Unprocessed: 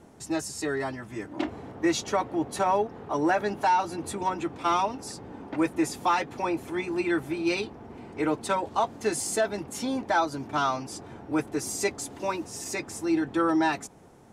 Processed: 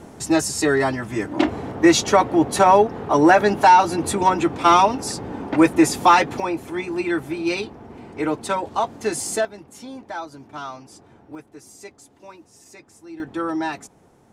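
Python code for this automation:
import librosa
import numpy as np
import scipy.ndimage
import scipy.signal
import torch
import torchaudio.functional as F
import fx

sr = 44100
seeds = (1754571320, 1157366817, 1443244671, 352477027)

y = fx.gain(x, sr, db=fx.steps((0.0, 11.0), (6.4, 3.5), (9.45, -7.0), (11.35, -13.0), (13.2, -1.0)))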